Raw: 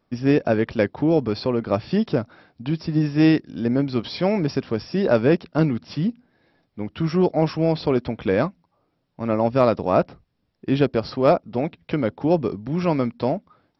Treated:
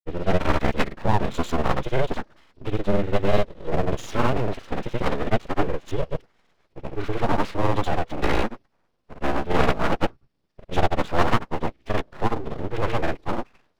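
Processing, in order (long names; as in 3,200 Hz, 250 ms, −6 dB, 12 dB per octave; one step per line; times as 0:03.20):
phase-vocoder pitch shift with formants kept −7.5 semitones
granular cloud, spray 87 ms
full-wave rectification
level +2.5 dB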